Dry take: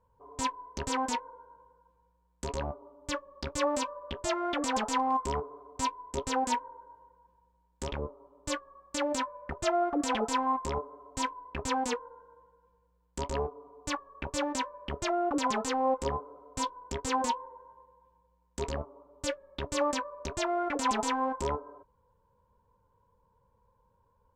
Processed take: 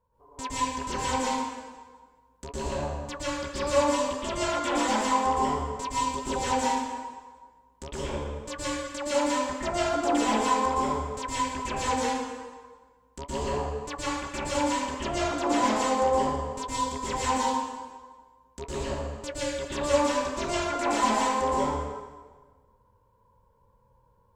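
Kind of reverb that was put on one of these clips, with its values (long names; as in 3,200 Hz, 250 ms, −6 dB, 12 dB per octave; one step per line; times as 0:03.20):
dense smooth reverb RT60 1.4 s, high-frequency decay 0.8×, pre-delay 105 ms, DRR −9 dB
level −4.5 dB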